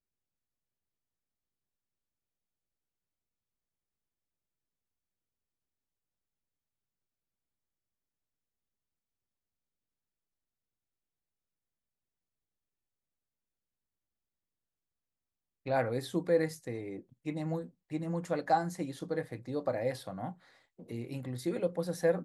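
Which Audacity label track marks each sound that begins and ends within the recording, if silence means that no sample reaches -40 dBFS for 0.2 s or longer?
15.660000	16.990000	sound
17.260000	17.660000	sound
17.920000	20.320000	sound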